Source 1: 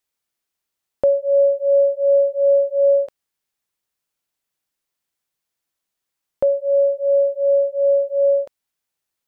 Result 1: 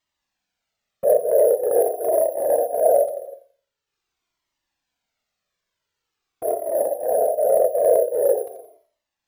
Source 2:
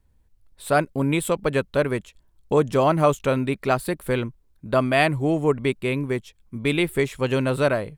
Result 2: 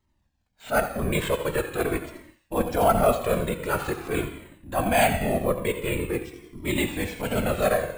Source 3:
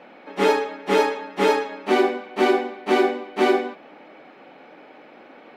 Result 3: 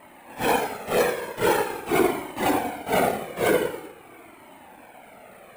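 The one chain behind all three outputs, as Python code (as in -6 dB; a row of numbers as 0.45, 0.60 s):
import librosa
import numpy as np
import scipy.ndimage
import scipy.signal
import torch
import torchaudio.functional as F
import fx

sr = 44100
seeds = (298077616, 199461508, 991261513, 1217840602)

y = scipy.signal.sosfilt(scipy.signal.butter(2, 58.0, 'highpass', fs=sr, output='sos'), x)
y = fx.low_shelf(y, sr, hz=77.0, db=-7.5)
y = fx.whisperise(y, sr, seeds[0])
y = fx.echo_thinned(y, sr, ms=86, feedback_pct=45, hz=640.0, wet_db=-10.5)
y = np.repeat(y[::4], 4)[:len(y)]
y = fx.rev_gated(y, sr, seeds[1], gate_ms=400, shape='falling', drr_db=7.5)
y = fx.transient(y, sr, attack_db=-8, sustain_db=-4)
y = fx.comb_cascade(y, sr, direction='falling', hz=0.45)
y = y * 10.0 ** (4.0 / 20.0)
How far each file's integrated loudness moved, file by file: -2.5, -3.0, -3.0 LU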